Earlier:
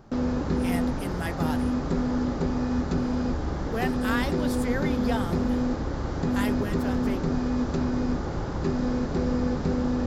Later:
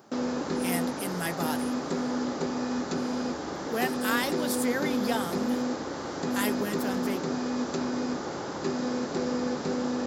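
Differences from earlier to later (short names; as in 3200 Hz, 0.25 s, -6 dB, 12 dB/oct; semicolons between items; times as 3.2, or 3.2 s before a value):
background: add HPF 270 Hz 12 dB/oct; master: add high shelf 5400 Hz +11.5 dB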